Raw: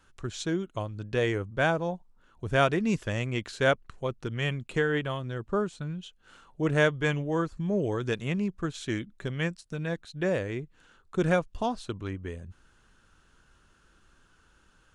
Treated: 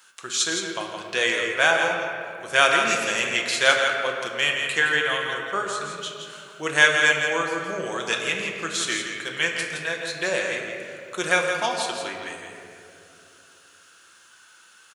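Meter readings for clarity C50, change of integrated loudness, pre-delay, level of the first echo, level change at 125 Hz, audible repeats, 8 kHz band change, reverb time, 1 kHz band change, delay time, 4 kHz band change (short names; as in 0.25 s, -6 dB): 1.5 dB, +7.0 dB, 6 ms, -6.5 dB, -11.5 dB, 1, +18.0 dB, 2.7 s, +8.0 dB, 0.167 s, +14.5 dB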